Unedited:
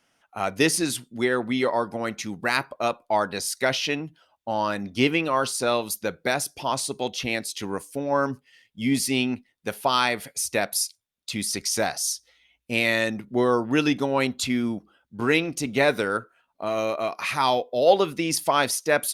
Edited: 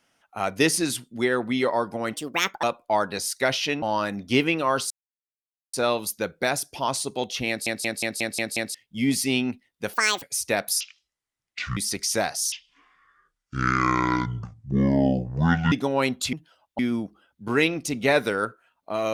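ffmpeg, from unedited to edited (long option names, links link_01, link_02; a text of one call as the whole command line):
ffmpeg -i in.wav -filter_complex "[0:a]asplit=20[link_01][link_02][link_03][link_04][link_05][link_06][link_07][link_08][link_09][link_10][link_11][link_12][link_13][link_14][link_15][link_16][link_17][link_18][link_19][link_20];[link_01]atrim=end=2.134[link_21];[link_02]atrim=start=2.13:end=2.84,asetpts=PTS-STARTPTS,asetrate=62181,aresample=44100,atrim=end_sample=22206,asetpts=PTS-STARTPTS[link_22];[link_03]atrim=start=2.836:end=4.032[link_23];[link_04]atrim=start=4.488:end=5.57,asetpts=PTS-STARTPTS,afade=type=out:start_time=1.078:duration=0.004:curve=hsin,apad=pad_dur=0.83[link_24];[link_05]atrim=start=5.57:end=7.502,asetpts=PTS-STARTPTS,afade=type=in:duration=0.004:curve=hsin[link_25];[link_06]atrim=start=7.318:end=7.502[link_26];[link_07]atrim=start=7.318:end=7.502[link_27];[link_08]atrim=start=7.318:end=7.502[link_28];[link_09]atrim=start=7.318:end=7.502[link_29];[link_10]atrim=start=7.318:end=7.502[link_30];[link_11]atrim=start=7.318:end=7.502[link_31];[link_12]atrim=start=8.578:end=9.774[link_32];[link_13]atrim=start=9.77:end=10.27,asetpts=PTS-STARTPTS,asetrate=75852,aresample=44100[link_33];[link_14]atrim=start=10.266:end=10.854[link_34];[link_15]atrim=start=10.85:end=11.39,asetpts=PTS-STARTPTS,asetrate=24696,aresample=44100[link_35];[link_16]atrim=start=11.386:end=12.144[link_36];[link_17]atrim=start=12.14:end=13.9,asetpts=PTS-STARTPTS,asetrate=24255,aresample=44100[link_37];[link_18]atrim=start=13.896:end=14.512[link_38];[link_19]atrim=start=4.028:end=4.492[link_39];[link_20]atrim=start=14.508[link_40];[link_21][link_22]acrossfade=duration=0.004:curve1=hsin:curve2=hsin[link_41];[link_41][link_23]acrossfade=duration=0.004:curve1=hsin:curve2=hsin[link_42];[link_24][link_25]concat=n=2:v=0:a=1[link_43];[link_42][link_43]acrossfade=duration=0.004:curve1=hsin:curve2=hsin[link_44];[link_44][link_26]acrossfade=duration=0.004:curve1=hsin:curve2=hsin[link_45];[link_45][link_27]acrossfade=duration=0.004:curve1=hsin:curve2=hsin[link_46];[link_46][link_28]acrossfade=duration=0.004:curve1=hsin:curve2=hsin[link_47];[link_47][link_29]acrossfade=duration=0.004:curve1=hsin:curve2=hsin[link_48];[link_48][link_30]acrossfade=duration=0.004:curve1=hsin:curve2=hsin[link_49];[link_49][link_31]acrossfade=duration=0.004:curve1=hsin:curve2=hsin[link_50];[link_50][link_32]acrossfade=duration=0.004:curve1=hsin:curve2=hsin[link_51];[link_51][link_33]acrossfade=duration=0.004:curve1=hsin:curve2=hsin[link_52];[link_52][link_34]acrossfade=duration=0.004:curve1=hsin:curve2=hsin[link_53];[link_53][link_35]acrossfade=duration=0.004:curve1=hsin:curve2=hsin[link_54];[link_54][link_36]acrossfade=duration=0.004:curve1=hsin:curve2=hsin[link_55];[link_55][link_37]acrossfade=duration=0.004:curve1=hsin:curve2=hsin[link_56];[link_56][link_38]acrossfade=duration=0.004:curve1=hsin:curve2=hsin[link_57];[link_57][link_39]acrossfade=duration=0.004:curve1=hsin:curve2=hsin[link_58];[link_58][link_40]acrossfade=duration=0.004:curve1=hsin:curve2=hsin" out.wav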